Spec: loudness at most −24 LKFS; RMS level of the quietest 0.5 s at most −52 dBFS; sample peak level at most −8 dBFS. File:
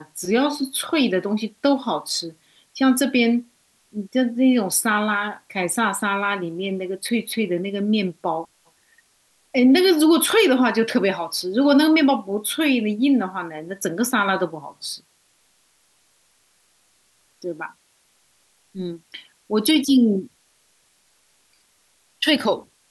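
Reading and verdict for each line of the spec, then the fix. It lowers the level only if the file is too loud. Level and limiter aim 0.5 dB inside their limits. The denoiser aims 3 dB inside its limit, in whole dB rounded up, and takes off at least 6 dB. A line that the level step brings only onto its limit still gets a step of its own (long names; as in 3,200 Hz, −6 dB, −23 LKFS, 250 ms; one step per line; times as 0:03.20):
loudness −20.5 LKFS: out of spec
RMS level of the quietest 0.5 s −62 dBFS: in spec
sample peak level −6.0 dBFS: out of spec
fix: level −4 dB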